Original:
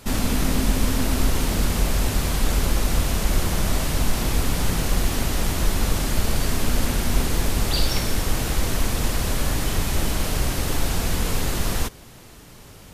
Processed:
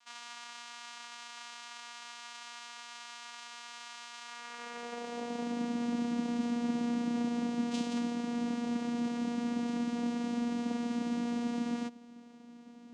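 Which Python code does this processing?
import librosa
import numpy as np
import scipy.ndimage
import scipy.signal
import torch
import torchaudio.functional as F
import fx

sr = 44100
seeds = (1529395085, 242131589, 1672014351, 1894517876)

y = fx.filter_sweep_highpass(x, sr, from_hz=2500.0, to_hz=140.0, start_s=4.21, end_s=5.79, q=1.9)
y = fx.vocoder(y, sr, bands=4, carrier='saw', carrier_hz=238.0)
y = F.gain(torch.from_numpy(y), -8.0).numpy()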